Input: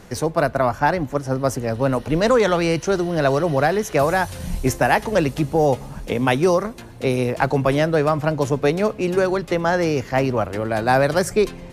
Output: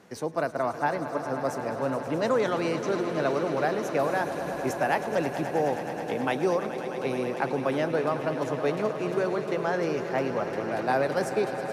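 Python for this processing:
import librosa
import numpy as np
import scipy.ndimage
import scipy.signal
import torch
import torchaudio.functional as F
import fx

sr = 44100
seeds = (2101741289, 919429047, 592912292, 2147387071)

p1 = scipy.signal.sosfilt(scipy.signal.butter(2, 190.0, 'highpass', fs=sr, output='sos'), x)
p2 = fx.high_shelf(p1, sr, hz=4000.0, db=-6.0)
p3 = p2 + fx.echo_swell(p2, sr, ms=106, loudest=5, wet_db=-13.5, dry=0)
y = F.gain(torch.from_numpy(p3), -8.5).numpy()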